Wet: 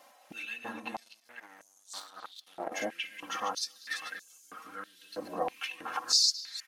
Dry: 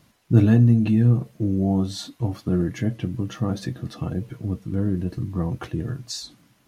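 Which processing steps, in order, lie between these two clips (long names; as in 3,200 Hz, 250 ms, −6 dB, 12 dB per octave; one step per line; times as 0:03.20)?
delay that plays each chunk backwards 200 ms, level −4 dB
parametric band 3,900 Hz −2.5 dB
comb filter 3.8 ms, depth 72%
downward compressor 2 to 1, threshold −25 dBFS, peak gain reduction 8.5 dB
0:00.94–0:02.72: power curve on the samples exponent 2
far-end echo of a speakerphone 240 ms, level −10 dB
high-pass on a step sequencer 3.1 Hz 680–6,800 Hz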